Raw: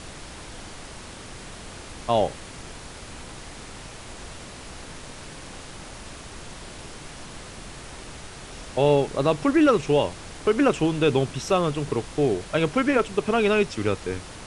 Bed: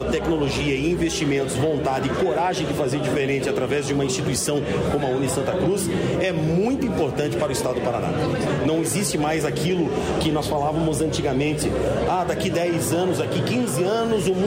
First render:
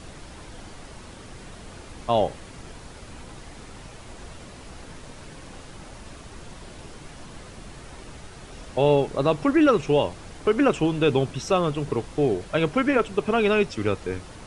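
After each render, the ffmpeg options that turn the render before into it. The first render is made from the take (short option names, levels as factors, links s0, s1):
-af "afftdn=nr=6:nf=-41"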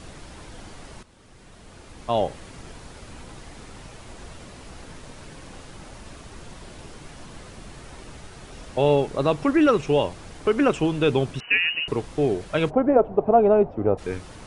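-filter_complex "[0:a]asettb=1/sr,asplit=3[s0][s1][s2];[s0]atrim=end=11.404[s3];[s1]atrim=start=11.4:end=11.88,asetpts=PTS-STARTPTS,afade=t=in:d=0.004:c=qsin,afade=t=out:st=0.476:d=0.004:c=qsin,lowpass=f=2600:t=q:w=0.5098,lowpass=f=2600:t=q:w=0.6013,lowpass=f=2600:t=q:w=0.9,lowpass=f=2600:t=q:w=2.563,afreqshift=-3000[s4];[s2]atrim=start=11.876[s5];[s3][s4]acrossfade=d=0.004:c1=hsin:c2=qsin[s6];[s6][s5]acrossfade=d=0.004:c1=qsin:c2=hsin,asplit=3[s7][s8][s9];[s7]afade=t=out:st=12.69:d=0.02[s10];[s8]lowpass=f=720:t=q:w=3.4,afade=t=in:st=12.69:d=0.02,afade=t=out:st=13.97:d=0.02[s11];[s9]afade=t=in:st=13.97:d=0.02[s12];[s10][s11][s12]amix=inputs=3:normalize=0,asplit=2[s13][s14];[s13]atrim=end=1.03,asetpts=PTS-STARTPTS,afade=t=out:st=1.026:d=0.004:c=hsin:silence=0.188365[s15];[s14]atrim=start=1.03,asetpts=PTS-STARTPTS,afade=t=in:d=1.39:silence=0.188365[s16];[s15][s16]concat=n=2:v=0:a=1"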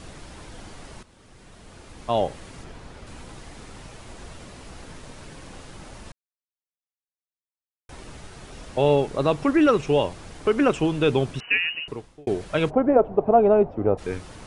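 -filter_complex "[0:a]asettb=1/sr,asplit=3[s0][s1][s2];[s0]atrim=end=2.644[s3];[s1]atrim=start=2.64:end=3.07,asetpts=PTS-STARTPTS,afade=t=in:d=0.004:c=qsin,afade=t=out:st=0.426:d=0.004:c=qsin,aemphasis=mode=reproduction:type=cd[s4];[s2]atrim=start=3.066[s5];[s3][s4]acrossfade=d=0.004:c1=hsin:c2=qsin[s6];[s6][s5]acrossfade=d=0.004:c1=qsin:c2=hsin,asplit=4[s7][s8][s9][s10];[s7]atrim=end=6.12,asetpts=PTS-STARTPTS,afade=t=out:st=6.116:d=0.004:c=hsin[s11];[s8]atrim=start=6.12:end=7.89,asetpts=PTS-STARTPTS,volume=0[s12];[s9]atrim=start=7.89:end=12.27,asetpts=PTS-STARTPTS,afade=t=in:d=0.004:c=hsin,afade=t=out:st=3.54:d=0.84[s13];[s10]atrim=start=12.27,asetpts=PTS-STARTPTS,afade=t=in:d=0.004:c=hsin[s14];[s11][s12][s13][s14]concat=n=4:v=0:a=1"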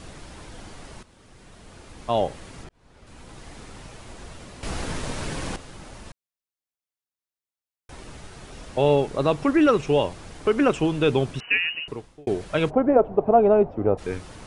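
-filter_complex "[0:a]asplit=4[s0][s1][s2][s3];[s0]atrim=end=2.69,asetpts=PTS-STARTPTS,afade=t=out:st=2.686:d=0.004:c=hsin[s4];[s1]atrim=start=2.69:end=4.632,asetpts=PTS-STARTPTS,afade=t=in:d=0.82[s5];[s2]atrim=start=4.628:end=5.562,asetpts=PTS-STARTPTS,volume=3.76[s6];[s3]atrim=start=5.558[s7];[s4][s5]concat=n=2:v=0:a=1[s8];[s8][s6]acrossfade=d=0.004:c1=hsin:c2=hsin[s9];[s9][s7]acrossfade=d=0.004:c1=hsin:c2=hsin"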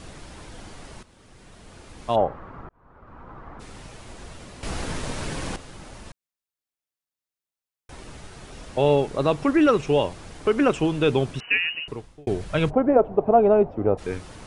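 -filter_complex "[0:a]asplit=3[s0][s1][s2];[s0]afade=t=out:st=2.15:d=0.02[s3];[s1]lowpass=f=1200:t=q:w=2.8,afade=t=in:st=2.15:d=0.02,afade=t=out:st=3.59:d=0.02[s4];[s2]afade=t=in:st=3.59:d=0.02[s5];[s3][s4][s5]amix=inputs=3:normalize=0,asettb=1/sr,asplit=3[s6][s7][s8];[s6]atrim=end=11.724[s9];[s7]atrim=start=11.72:end=12.74,asetpts=PTS-STARTPTS,afade=t=in:d=0.004:c=qsin,afade=t=out:st=1.016:d=0.004:c=qsin,asubboost=boost=6:cutoff=200[s10];[s8]atrim=start=12.736[s11];[s9][s10]acrossfade=d=0.004:c1=hsin:c2=qsin[s12];[s12][s11]acrossfade=d=0.004:c1=qsin:c2=hsin"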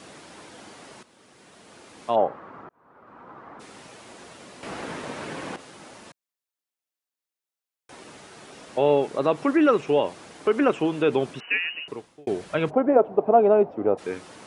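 -filter_complex "[0:a]acrossover=split=2900[s0][s1];[s1]acompressor=threshold=0.00447:ratio=4:attack=1:release=60[s2];[s0][s2]amix=inputs=2:normalize=0,highpass=230"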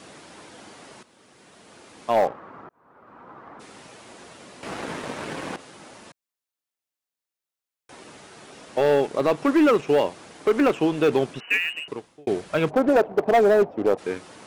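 -filter_complex "[0:a]asplit=2[s0][s1];[s1]acrusher=bits=4:mix=0:aa=0.5,volume=0.316[s2];[s0][s2]amix=inputs=2:normalize=0,volume=4.47,asoftclip=hard,volume=0.224"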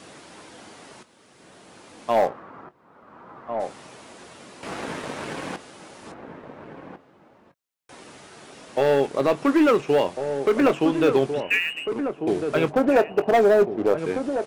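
-filter_complex "[0:a]asplit=2[s0][s1];[s1]adelay=22,volume=0.224[s2];[s0][s2]amix=inputs=2:normalize=0,asplit=2[s3][s4];[s4]adelay=1399,volume=0.447,highshelf=f=4000:g=-31.5[s5];[s3][s5]amix=inputs=2:normalize=0"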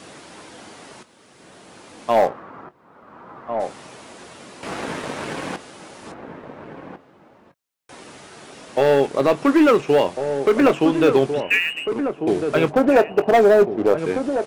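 -af "volume=1.5"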